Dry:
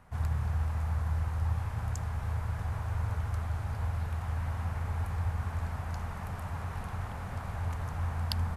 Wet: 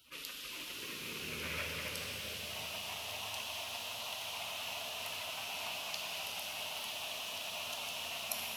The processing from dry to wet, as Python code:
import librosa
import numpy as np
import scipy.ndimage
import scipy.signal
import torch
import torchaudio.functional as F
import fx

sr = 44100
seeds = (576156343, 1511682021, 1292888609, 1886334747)

y = fx.graphic_eq(x, sr, hz=(250, 500, 1000, 2000, 8000), db=(4, -12, -11, 9, -10))
y = fx.filter_sweep_highpass(y, sr, from_hz=390.0, to_hz=1500.0, start_s=0.5, end_s=2.79, q=2.3)
y = fx.peak_eq(y, sr, hz=750.0, db=13.0, octaves=1.3)
y = fx.spec_gate(y, sr, threshold_db=-20, keep='weak')
y = fx.rev_shimmer(y, sr, seeds[0], rt60_s=3.7, semitones=12, shimmer_db=-8, drr_db=0.5)
y = y * 10.0 ** (14.0 / 20.0)